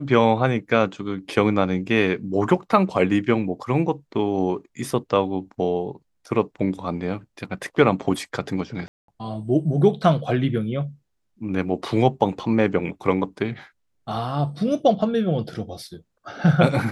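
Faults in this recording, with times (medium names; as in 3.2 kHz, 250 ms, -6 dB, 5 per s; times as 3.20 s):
8.88–9.08 s: dropout 203 ms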